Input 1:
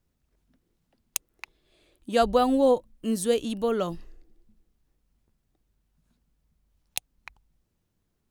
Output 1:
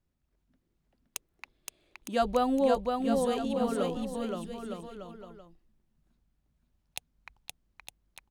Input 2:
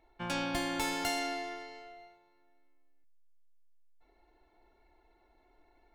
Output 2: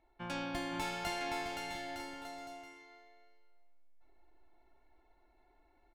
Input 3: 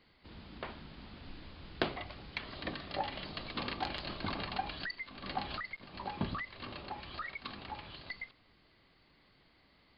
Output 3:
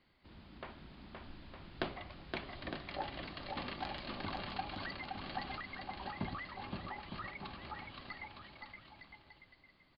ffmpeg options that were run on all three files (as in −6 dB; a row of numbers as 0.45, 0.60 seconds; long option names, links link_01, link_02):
-af "highshelf=frequency=4700:gain=-6.5,bandreject=frequency=460:width=12,aecho=1:1:520|910|1202|1422|1586:0.631|0.398|0.251|0.158|0.1,volume=-4.5dB"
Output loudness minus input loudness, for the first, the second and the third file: −4.0, −5.5, −3.5 LU